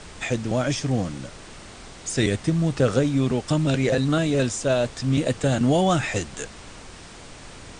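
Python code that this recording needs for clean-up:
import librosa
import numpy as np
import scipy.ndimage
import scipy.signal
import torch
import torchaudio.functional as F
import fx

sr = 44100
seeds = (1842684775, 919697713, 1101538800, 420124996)

y = fx.noise_reduce(x, sr, print_start_s=6.95, print_end_s=7.45, reduce_db=26.0)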